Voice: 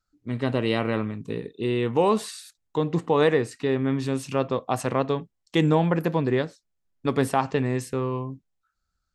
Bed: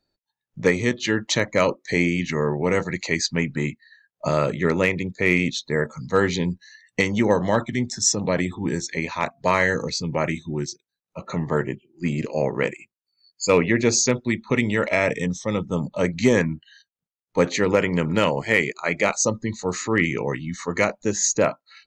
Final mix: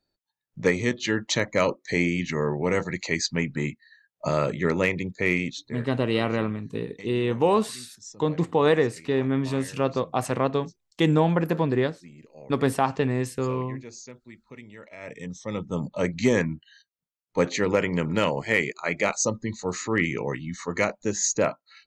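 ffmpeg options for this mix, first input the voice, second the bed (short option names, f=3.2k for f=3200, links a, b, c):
-filter_complex "[0:a]adelay=5450,volume=0dB[a];[1:a]volume=17dB,afade=t=out:st=5.19:d=0.7:silence=0.0944061,afade=t=in:st=14.97:d=0.86:silence=0.1[b];[a][b]amix=inputs=2:normalize=0"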